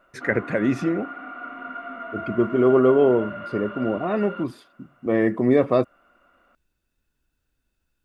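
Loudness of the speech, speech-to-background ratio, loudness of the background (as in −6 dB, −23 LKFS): −22.0 LKFS, 13.0 dB, −35.0 LKFS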